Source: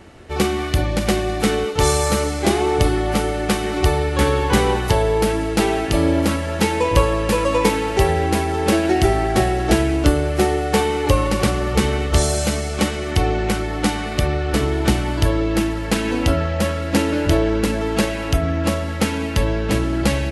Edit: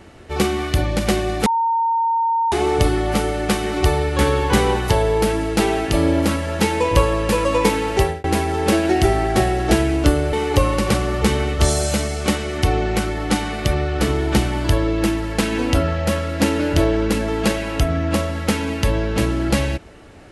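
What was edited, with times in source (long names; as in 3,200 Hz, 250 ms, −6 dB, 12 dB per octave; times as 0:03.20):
0:01.46–0:02.52: beep over 916 Hz −15.5 dBFS
0:07.99–0:08.24: fade out
0:10.33–0:10.86: remove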